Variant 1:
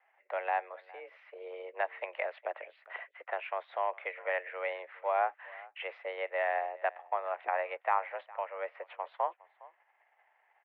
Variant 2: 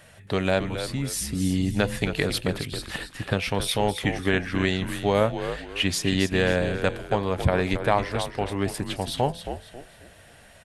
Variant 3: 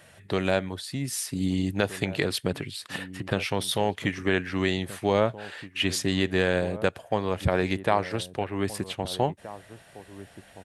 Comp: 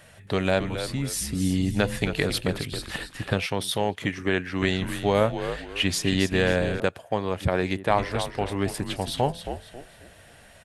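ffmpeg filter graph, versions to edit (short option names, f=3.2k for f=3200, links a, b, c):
-filter_complex "[2:a]asplit=2[a][b];[1:a]asplit=3[c][d][e];[c]atrim=end=3.462[f];[a]atrim=start=3.458:end=4.622[g];[d]atrim=start=4.618:end=6.802[h];[b]atrim=start=6.798:end=7.902[i];[e]atrim=start=7.898[j];[f][g]acrossfade=d=0.004:c1=hsin:c2=hsin[k];[k][h]acrossfade=d=0.004:c1=hsin:c2=hsin[l];[l][i]acrossfade=d=0.004:c1=hsin:c2=hsin[m];[m][j]acrossfade=d=0.004:c1=hsin:c2=hsin"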